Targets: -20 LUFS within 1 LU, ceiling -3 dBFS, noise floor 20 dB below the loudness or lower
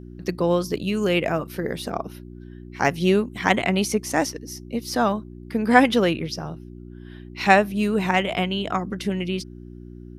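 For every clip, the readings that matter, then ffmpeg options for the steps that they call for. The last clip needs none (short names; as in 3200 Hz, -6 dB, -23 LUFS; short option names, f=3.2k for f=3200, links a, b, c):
hum 60 Hz; harmonics up to 360 Hz; hum level -39 dBFS; loudness -22.5 LUFS; peak -1.0 dBFS; loudness target -20.0 LUFS
-> -af "bandreject=f=60:t=h:w=4,bandreject=f=120:t=h:w=4,bandreject=f=180:t=h:w=4,bandreject=f=240:t=h:w=4,bandreject=f=300:t=h:w=4,bandreject=f=360:t=h:w=4"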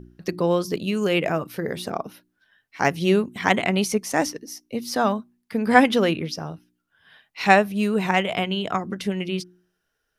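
hum none; loudness -23.0 LUFS; peak -1.5 dBFS; loudness target -20.0 LUFS
-> -af "volume=3dB,alimiter=limit=-3dB:level=0:latency=1"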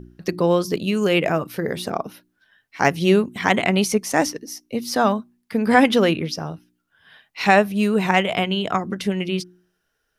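loudness -20.5 LUFS; peak -3.0 dBFS; noise floor -73 dBFS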